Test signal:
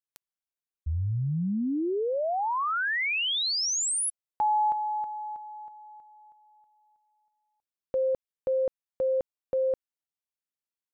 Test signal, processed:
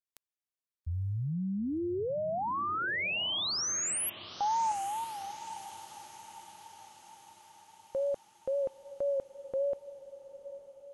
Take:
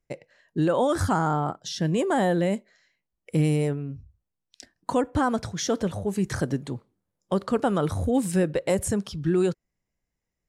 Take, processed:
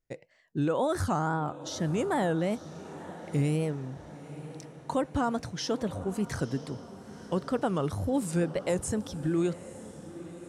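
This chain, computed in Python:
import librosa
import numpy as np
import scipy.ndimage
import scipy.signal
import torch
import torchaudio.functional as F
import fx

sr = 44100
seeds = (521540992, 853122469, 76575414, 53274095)

y = fx.wow_flutter(x, sr, seeds[0], rate_hz=2.1, depth_cents=130.0)
y = fx.echo_diffused(y, sr, ms=924, feedback_pct=55, wet_db=-15.0)
y = y * 10.0 ** (-5.0 / 20.0)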